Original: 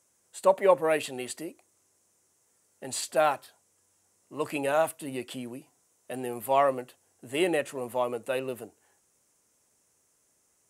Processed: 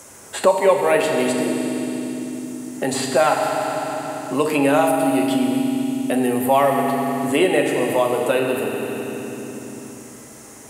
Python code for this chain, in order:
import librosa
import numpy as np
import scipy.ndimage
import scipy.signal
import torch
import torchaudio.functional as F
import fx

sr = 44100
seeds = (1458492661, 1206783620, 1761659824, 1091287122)

y = fx.rev_fdn(x, sr, rt60_s=2.1, lf_ratio=1.55, hf_ratio=1.0, size_ms=22.0, drr_db=1.0)
y = fx.band_squash(y, sr, depth_pct=70)
y = y * librosa.db_to_amplitude(8.5)